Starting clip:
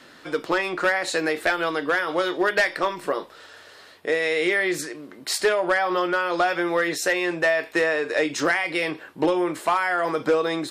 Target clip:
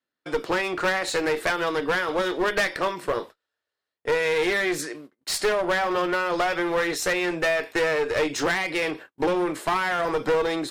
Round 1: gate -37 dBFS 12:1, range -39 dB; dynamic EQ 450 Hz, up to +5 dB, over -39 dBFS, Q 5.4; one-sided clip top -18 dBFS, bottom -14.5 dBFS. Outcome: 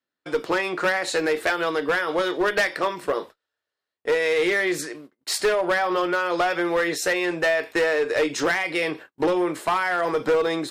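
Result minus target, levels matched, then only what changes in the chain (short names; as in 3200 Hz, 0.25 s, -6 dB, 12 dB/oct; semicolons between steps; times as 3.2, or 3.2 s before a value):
one-sided clip: distortion -6 dB
change: one-sided clip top -25 dBFS, bottom -14.5 dBFS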